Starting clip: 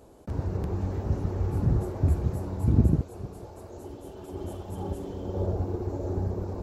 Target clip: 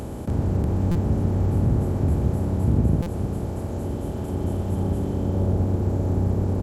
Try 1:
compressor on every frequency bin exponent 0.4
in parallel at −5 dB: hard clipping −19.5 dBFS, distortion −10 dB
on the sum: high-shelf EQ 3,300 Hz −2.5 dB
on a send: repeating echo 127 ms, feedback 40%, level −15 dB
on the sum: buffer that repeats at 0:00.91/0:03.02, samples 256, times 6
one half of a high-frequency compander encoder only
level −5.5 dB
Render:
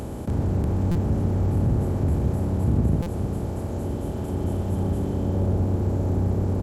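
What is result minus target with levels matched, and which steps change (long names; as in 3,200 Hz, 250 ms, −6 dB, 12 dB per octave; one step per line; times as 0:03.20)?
hard clipping: distortion +12 dB
change: hard clipping −12 dBFS, distortion −22 dB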